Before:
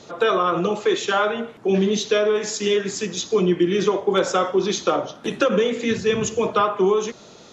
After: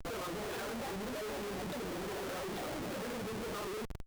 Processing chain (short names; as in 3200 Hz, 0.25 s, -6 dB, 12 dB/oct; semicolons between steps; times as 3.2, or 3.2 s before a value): limiter -16.5 dBFS, peak gain reduction 9.5 dB; compressor 12:1, threshold -24 dBFS, peak gain reduction 5 dB; echoes that change speed 0.723 s, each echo +5 st, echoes 2, each echo -6 dB; plain phase-vocoder stretch 0.54×; whine 660 Hz -56 dBFS; air absorption 290 m; Schmitt trigger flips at -41.5 dBFS; gain -7 dB